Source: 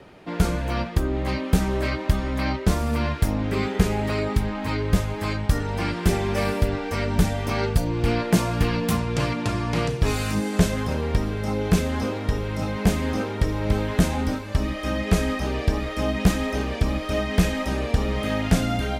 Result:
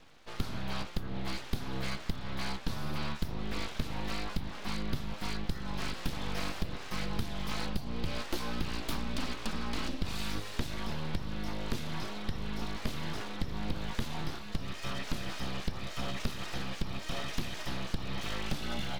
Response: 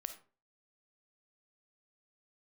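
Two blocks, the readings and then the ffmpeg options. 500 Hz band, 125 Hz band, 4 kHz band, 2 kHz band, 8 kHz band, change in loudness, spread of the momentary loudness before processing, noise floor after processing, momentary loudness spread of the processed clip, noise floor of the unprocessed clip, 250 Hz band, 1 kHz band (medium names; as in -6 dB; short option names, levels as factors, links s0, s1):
-17.5 dB, -15.5 dB, -5.5 dB, -10.5 dB, -11.5 dB, -13.5 dB, 4 LU, -42 dBFS, 3 LU, -32 dBFS, -14.5 dB, -12.0 dB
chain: -af "equalizer=f=125:t=o:w=1:g=5,equalizer=f=250:t=o:w=1:g=-11,equalizer=f=500:t=o:w=1:g=-9,equalizer=f=2000:t=o:w=1:g=-4,equalizer=f=4000:t=o:w=1:g=8,equalizer=f=8000:t=o:w=1:g=-11,acompressor=threshold=0.0794:ratio=6,aeval=exprs='abs(val(0))':c=same,volume=0.562"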